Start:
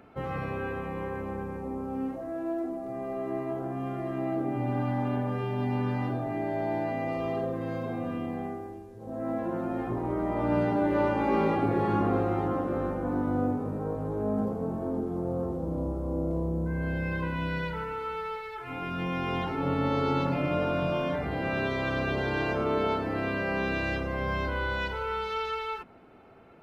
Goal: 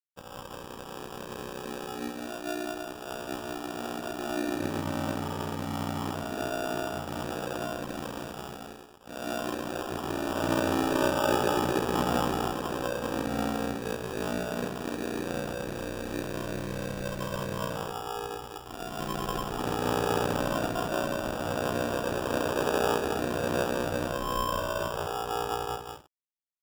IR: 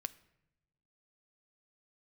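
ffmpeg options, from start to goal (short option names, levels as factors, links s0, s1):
-af "dynaudnorm=f=740:g=3:m=1.78,aeval=exprs='sgn(val(0))*max(abs(val(0))-0.0158,0)':c=same,lowshelf=f=240:g=-10,aecho=1:1:192.4|244.9:0.631|0.251,acrusher=samples=21:mix=1:aa=0.000001,aeval=exprs='val(0)*sin(2*PI*30*n/s)':c=same,adynamicequalizer=threshold=0.0112:dfrequency=1900:dqfactor=0.7:tfrequency=1900:tqfactor=0.7:attack=5:release=100:ratio=0.375:range=2:mode=cutabove:tftype=highshelf"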